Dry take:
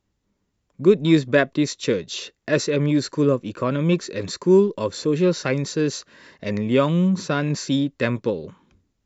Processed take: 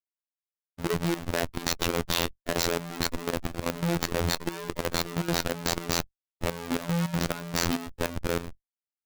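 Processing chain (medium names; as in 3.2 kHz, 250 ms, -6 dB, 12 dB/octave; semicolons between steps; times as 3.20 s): Schmitt trigger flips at -31.5 dBFS; robot voice 85.2 Hz; level held to a coarse grid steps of 12 dB; trim -1.5 dB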